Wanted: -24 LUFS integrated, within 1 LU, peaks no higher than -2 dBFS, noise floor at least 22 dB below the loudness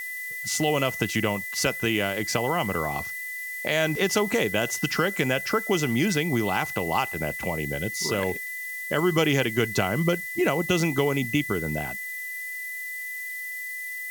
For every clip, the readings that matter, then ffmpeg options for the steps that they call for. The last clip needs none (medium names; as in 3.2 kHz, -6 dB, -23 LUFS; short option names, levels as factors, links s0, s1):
steady tone 2 kHz; tone level -32 dBFS; noise floor -34 dBFS; noise floor target -48 dBFS; loudness -26.0 LUFS; peak level -6.5 dBFS; loudness target -24.0 LUFS
-> -af "bandreject=f=2000:w=30"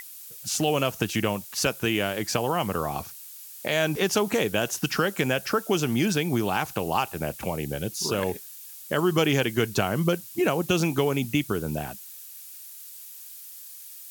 steady tone not found; noise floor -44 dBFS; noise floor target -48 dBFS
-> -af "afftdn=nr=6:nf=-44"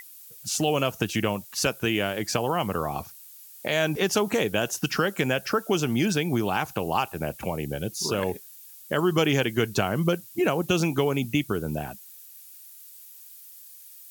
noise floor -47 dBFS; noise floor target -48 dBFS
-> -af "afftdn=nr=6:nf=-47"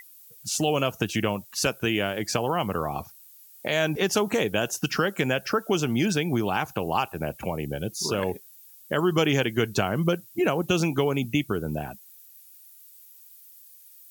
noise floor -51 dBFS; loudness -26.0 LUFS; peak level -7.5 dBFS; loudness target -24.0 LUFS
-> -af "volume=1.26"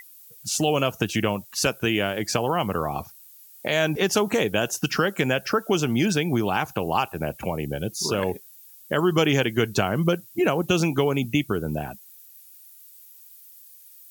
loudness -24.0 LUFS; peak level -5.5 dBFS; noise floor -49 dBFS